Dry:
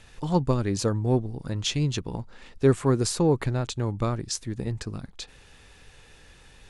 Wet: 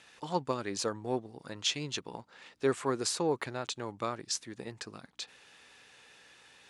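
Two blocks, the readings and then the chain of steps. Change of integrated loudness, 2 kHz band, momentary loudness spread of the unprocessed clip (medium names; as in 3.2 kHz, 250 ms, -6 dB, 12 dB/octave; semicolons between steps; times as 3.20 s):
-8.5 dB, -2.0 dB, 15 LU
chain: hum 60 Hz, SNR 31 dB; frequency weighting A; trim -3 dB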